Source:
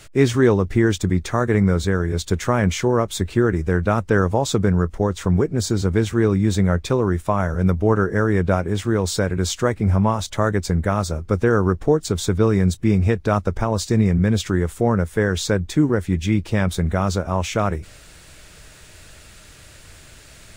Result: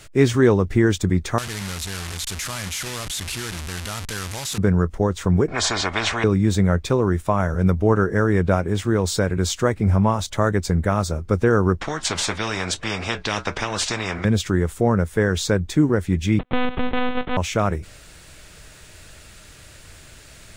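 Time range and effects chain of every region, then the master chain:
0:01.38–0:04.58: linear delta modulator 64 kbit/s, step −14.5 dBFS + guitar amp tone stack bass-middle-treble 5-5-5 + envelope flattener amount 50%
0:05.48–0:06.24: head-to-tape spacing loss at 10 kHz 30 dB + comb filter 2.8 ms, depth 51% + every bin compressed towards the loudest bin 10 to 1
0:11.81–0:14.25: low-pass filter 4,300 Hz + flanger 1 Hz, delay 5.8 ms, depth 3 ms, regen −61% + every bin compressed towards the loudest bin 4 to 1
0:16.39–0:17.37: samples sorted by size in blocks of 128 samples + noise gate −30 dBFS, range −32 dB + one-pitch LPC vocoder at 8 kHz 250 Hz
whole clip: no processing

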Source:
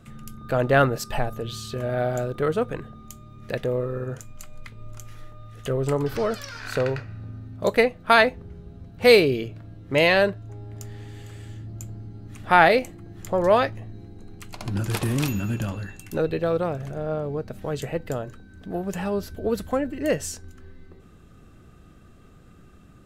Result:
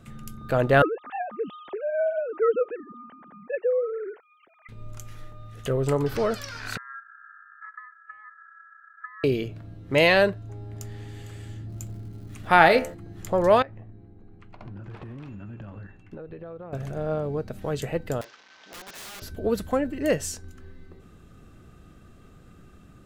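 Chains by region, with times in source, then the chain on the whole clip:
0:00.82–0:04.69: three sine waves on the formant tracks + high-frequency loss of the air 300 metres
0:06.77–0:09.24: downward compressor 5 to 1, threshold −24 dBFS + flat-topped band-pass 180 Hz, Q 1.9 + ring modulation 1,500 Hz
0:11.69–0:12.93: hum removal 74.19 Hz, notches 27 + surface crackle 280 per second −49 dBFS
0:13.62–0:16.73: low-pass filter 1,900 Hz + noise gate −36 dBFS, range −7 dB + downward compressor 12 to 1, threshold −36 dBFS
0:18.21–0:19.22: linear delta modulator 32 kbit/s, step −42.5 dBFS + high-pass filter 780 Hz + wrap-around overflow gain 36 dB
whole clip: no processing

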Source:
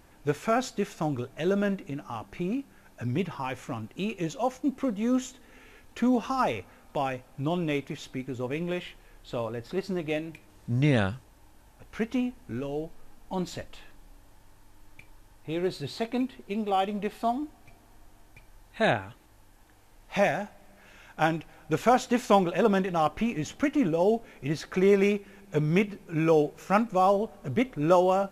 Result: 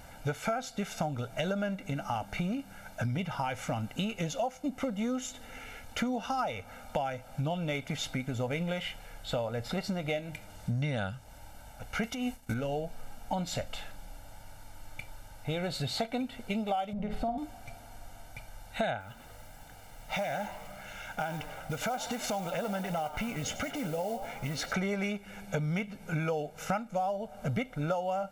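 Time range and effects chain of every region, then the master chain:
0:12.03–0:12.54: high-shelf EQ 3,400 Hz +8.5 dB + compressor whose output falls as the input rises −30 dBFS, ratio −0.5 + downward expander −39 dBFS
0:16.93–0:17.38: spectral tilt −3.5 dB per octave + downward compressor 5 to 1, threshold −30 dBFS + flutter between parallel walls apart 8.9 metres, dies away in 0.38 s
0:19.00–0:24.73: downward compressor 4 to 1, threshold −37 dBFS + noise that follows the level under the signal 21 dB + echo with shifted repeats 98 ms, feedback 61%, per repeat +130 Hz, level −14.5 dB
whole clip: low-shelf EQ 120 Hz −5 dB; comb filter 1.4 ms, depth 79%; downward compressor 10 to 1, threshold −35 dBFS; level +6 dB

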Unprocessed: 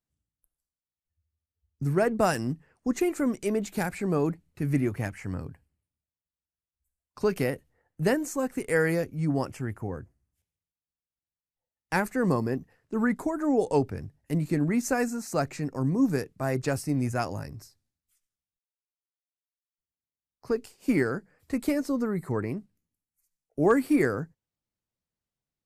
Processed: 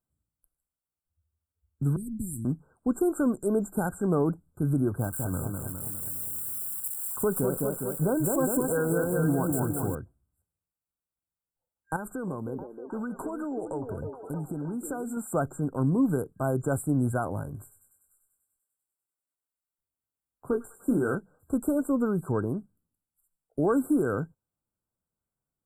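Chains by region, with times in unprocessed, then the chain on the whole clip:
0:01.96–0:02.45: inverse Chebyshev band-stop filter 690–2,600 Hz, stop band 70 dB + comb filter 3.1 ms, depth 59%
0:04.99–0:09.95: spike at every zero crossing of −28 dBFS + feedback echo with a swinging delay time 204 ms, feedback 58%, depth 158 cents, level −4.5 dB
0:11.96–0:15.17: downward compressor 8 to 1, threshold −32 dBFS + echo through a band-pass that steps 313 ms, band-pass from 420 Hz, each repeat 0.7 octaves, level −3.5 dB
0:17.45–0:21.15: double-tracking delay 21 ms −6.5 dB + delay with a high-pass on its return 98 ms, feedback 75%, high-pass 2,200 Hz, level −8.5 dB
whole clip: brickwall limiter −18.5 dBFS; brick-wall band-stop 1,600–7,200 Hz; level +2 dB

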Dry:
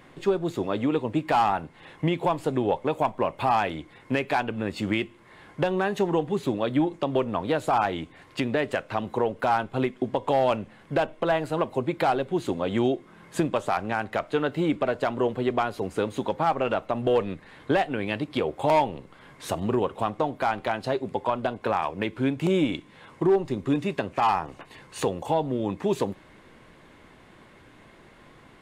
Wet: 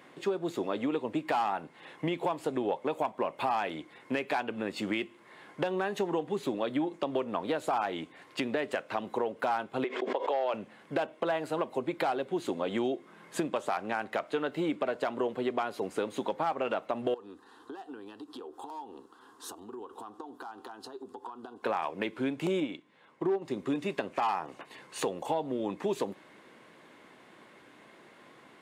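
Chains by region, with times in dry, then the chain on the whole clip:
0:09.84–0:10.54: Chebyshev high-pass filter 390 Hz, order 3 + high-frequency loss of the air 120 metres + background raised ahead of every attack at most 87 dB per second
0:17.14–0:21.63: downward compressor 12 to 1, threshold −33 dBFS + phaser with its sweep stopped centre 590 Hz, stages 6
0:22.60–0:23.42: high-shelf EQ 6,900 Hz −9.5 dB + expander for the loud parts, over −36 dBFS
whole clip: high-pass filter 230 Hz 12 dB per octave; downward compressor 2.5 to 1, threshold −26 dBFS; level −2 dB

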